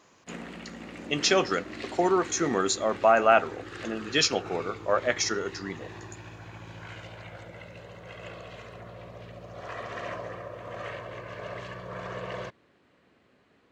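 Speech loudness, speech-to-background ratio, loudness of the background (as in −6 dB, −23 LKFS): −25.5 LKFS, 15.5 dB, −41.0 LKFS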